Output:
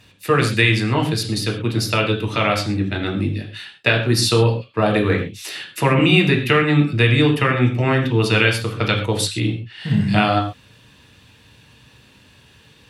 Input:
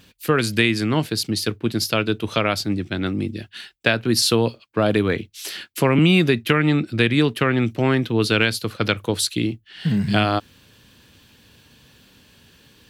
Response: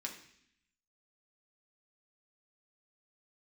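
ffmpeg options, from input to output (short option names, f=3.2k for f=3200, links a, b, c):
-filter_complex "[0:a]asettb=1/sr,asplit=3[a][b][c];[a]atrim=end=6.824[d];[b]atrim=start=6.82:end=8.83,asetpts=PTS-STARTPTS,afade=t=in:d=0.004:c=qsin,afade=t=out:st=2.006:d=0.004:c=qsin,bandreject=f=4k:w=11[e];[c]atrim=start=8.826[f];[d][e]acrossfade=d=0.004:c1=hsin:c2=qsin[g];[g][f]acrossfade=d=0.004:c1=qsin:c2=hsin[h];[1:a]atrim=start_sample=2205,atrim=end_sample=3087,asetrate=22050,aresample=44100[i];[h][i]afir=irnorm=-1:irlink=0,volume=-1dB"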